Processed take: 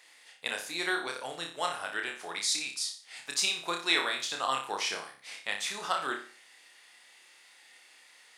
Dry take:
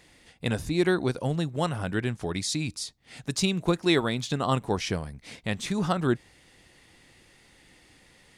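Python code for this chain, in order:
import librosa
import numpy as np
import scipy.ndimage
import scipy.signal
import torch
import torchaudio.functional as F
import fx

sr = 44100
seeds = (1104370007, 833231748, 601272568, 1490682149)

p1 = scipy.signal.sosfilt(scipy.signal.butter(2, 910.0, 'highpass', fs=sr, output='sos'), x)
y = p1 + fx.room_flutter(p1, sr, wall_m=5.1, rt60_s=0.41, dry=0)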